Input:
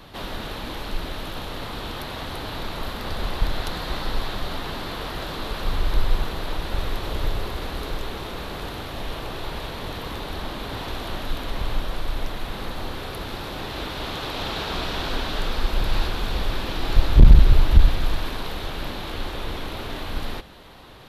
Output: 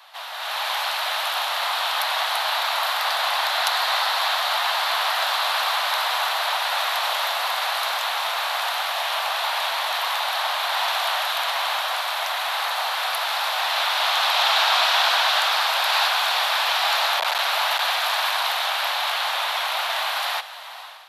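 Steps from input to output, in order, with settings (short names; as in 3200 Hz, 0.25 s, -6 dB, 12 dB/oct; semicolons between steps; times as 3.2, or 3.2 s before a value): steep high-pass 670 Hz 48 dB/oct; AGC gain up to 12 dB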